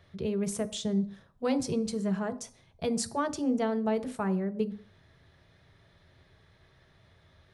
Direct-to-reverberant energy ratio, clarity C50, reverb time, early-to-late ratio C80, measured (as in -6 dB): 8.5 dB, 17.5 dB, 0.45 s, 20.5 dB